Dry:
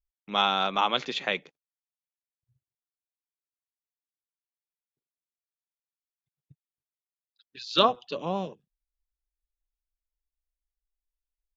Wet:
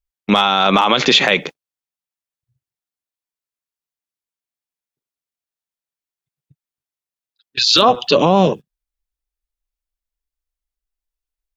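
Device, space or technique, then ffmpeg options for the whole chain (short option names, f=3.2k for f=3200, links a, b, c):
loud club master: -af "agate=range=-23dB:threshold=-47dB:ratio=16:detection=peak,acompressor=threshold=-26dB:ratio=2.5,asoftclip=type=hard:threshold=-15dB,alimiter=level_in=27dB:limit=-1dB:release=50:level=0:latency=1,volume=-1dB"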